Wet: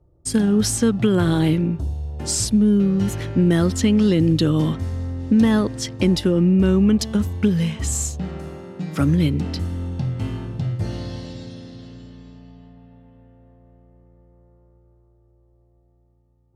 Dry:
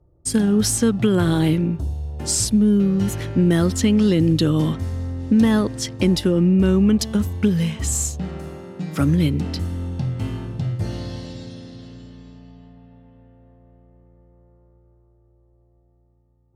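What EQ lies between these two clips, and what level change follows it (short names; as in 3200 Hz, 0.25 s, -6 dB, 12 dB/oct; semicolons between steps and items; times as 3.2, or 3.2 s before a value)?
high shelf 11000 Hz -7 dB; 0.0 dB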